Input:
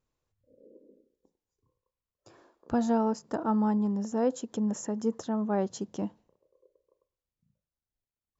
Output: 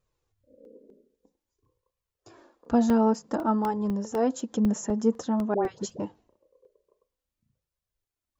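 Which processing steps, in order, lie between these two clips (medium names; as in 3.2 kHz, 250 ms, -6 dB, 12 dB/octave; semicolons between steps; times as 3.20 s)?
flange 0.51 Hz, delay 1.6 ms, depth 3.5 ms, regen -20%; 5.54–6.00 s: phase dispersion highs, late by 106 ms, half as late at 1.1 kHz; crackling interface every 0.25 s, samples 64, zero, from 0.65 s; trim +7 dB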